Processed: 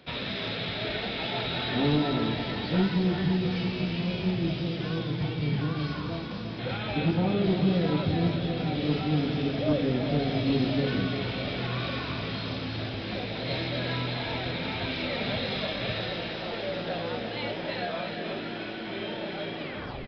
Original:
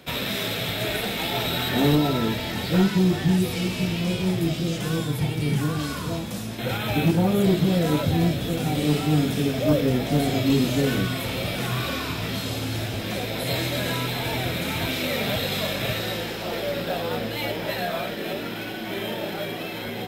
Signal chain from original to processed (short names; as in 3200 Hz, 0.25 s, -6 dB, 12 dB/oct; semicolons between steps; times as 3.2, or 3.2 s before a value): tape stop at the end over 0.48 s; split-band echo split 330 Hz, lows 0.186 s, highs 0.344 s, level -7 dB; downsampling 11025 Hz; gain -5.5 dB